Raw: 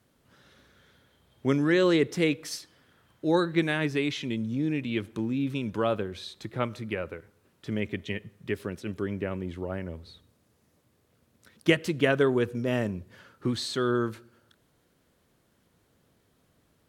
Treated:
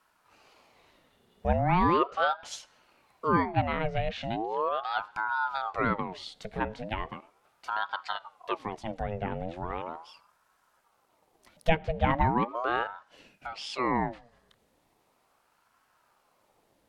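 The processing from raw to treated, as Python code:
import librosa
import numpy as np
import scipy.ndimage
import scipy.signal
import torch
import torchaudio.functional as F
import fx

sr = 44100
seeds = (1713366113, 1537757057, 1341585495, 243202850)

y = fx.env_lowpass_down(x, sr, base_hz=1900.0, full_db=-23.5)
y = fx.highpass(y, sr, hz=fx.line((12.83, 380.0), (13.78, 1100.0)), slope=6, at=(12.83, 13.78), fade=0.02)
y = fx.ring_lfo(y, sr, carrier_hz=750.0, swing_pct=60, hz=0.38)
y = y * librosa.db_to_amplitude(1.5)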